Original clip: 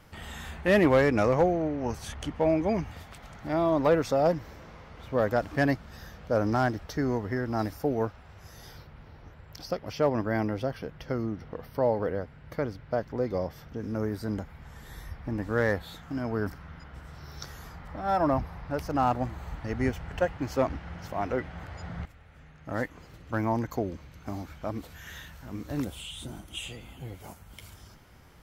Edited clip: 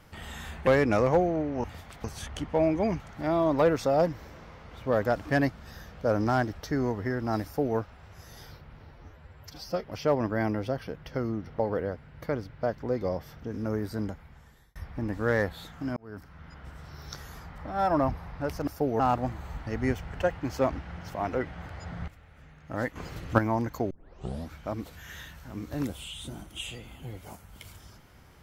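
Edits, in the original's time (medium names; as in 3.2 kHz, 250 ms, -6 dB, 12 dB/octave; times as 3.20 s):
0.67–0.93 s: delete
2.86–3.26 s: move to 1.90 s
7.71–8.03 s: copy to 18.97 s
9.17–9.80 s: stretch 1.5×
11.54–11.89 s: delete
14.28–15.05 s: fade out
16.26–16.90 s: fade in
22.93–23.36 s: gain +10 dB
23.88 s: tape start 0.61 s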